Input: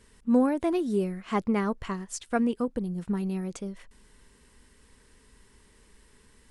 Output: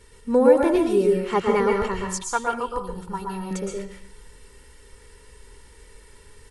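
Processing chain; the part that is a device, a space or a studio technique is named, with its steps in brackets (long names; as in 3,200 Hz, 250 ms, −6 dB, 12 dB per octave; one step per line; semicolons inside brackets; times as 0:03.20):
microphone above a desk (comb filter 2.2 ms, depth 58%; convolution reverb RT60 0.55 s, pre-delay 110 ms, DRR 0.5 dB)
0:02.22–0:03.51: octave-band graphic EQ 125/250/500/1,000/2,000 Hz −4/−9/−11/+12/−8 dB
level +4.5 dB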